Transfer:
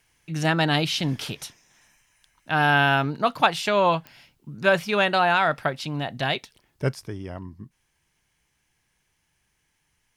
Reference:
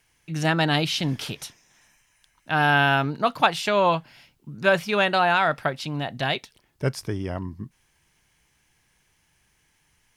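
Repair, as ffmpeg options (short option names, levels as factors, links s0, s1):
-af "adeclick=t=4,asetnsamples=n=441:p=0,asendcmd='6.94 volume volume 5.5dB',volume=1"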